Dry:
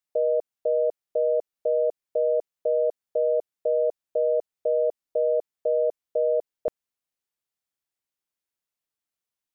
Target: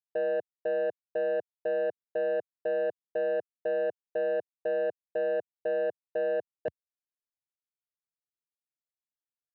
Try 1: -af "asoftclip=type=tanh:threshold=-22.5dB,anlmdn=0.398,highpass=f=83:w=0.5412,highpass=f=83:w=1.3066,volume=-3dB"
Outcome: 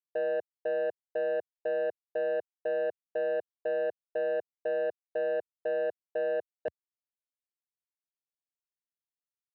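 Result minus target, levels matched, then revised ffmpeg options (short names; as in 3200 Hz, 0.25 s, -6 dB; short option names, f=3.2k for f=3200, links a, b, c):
125 Hz band -5.0 dB
-af "asoftclip=type=tanh:threshold=-22.5dB,anlmdn=0.398,highpass=f=83:w=0.5412,highpass=f=83:w=1.3066,equalizer=f=130:t=o:w=2.2:g=7.5,volume=-3dB"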